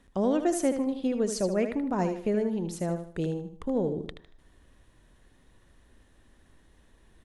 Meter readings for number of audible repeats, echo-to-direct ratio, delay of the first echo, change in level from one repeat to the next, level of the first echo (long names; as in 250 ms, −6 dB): 3, −8.0 dB, 77 ms, −9.5 dB, −8.5 dB